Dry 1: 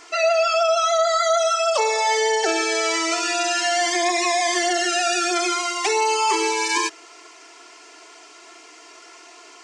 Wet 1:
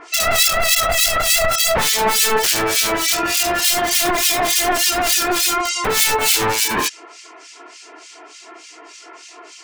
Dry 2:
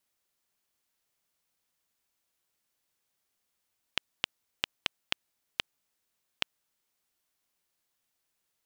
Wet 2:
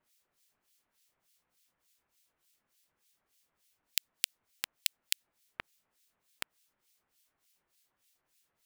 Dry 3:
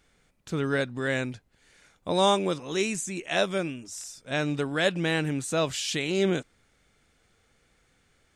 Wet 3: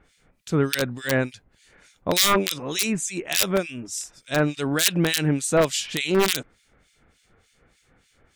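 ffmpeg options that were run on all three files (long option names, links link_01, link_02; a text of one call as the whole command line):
ffmpeg -i in.wav -filter_complex "[0:a]acontrast=44,aeval=exprs='(mod(3.35*val(0)+1,2)-1)/3.35':channel_layout=same,acrossover=split=2100[link_01][link_02];[link_01]aeval=exprs='val(0)*(1-1/2+1/2*cos(2*PI*3.4*n/s))':channel_layout=same[link_03];[link_02]aeval=exprs='val(0)*(1-1/2-1/2*cos(2*PI*3.4*n/s))':channel_layout=same[link_04];[link_03][link_04]amix=inputs=2:normalize=0,volume=3.5dB" out.wav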